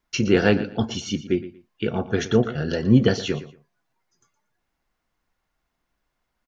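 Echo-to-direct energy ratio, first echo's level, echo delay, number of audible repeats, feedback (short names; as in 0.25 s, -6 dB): -15.0 dB, -15.0 dB, 0.117 s, 2, 22%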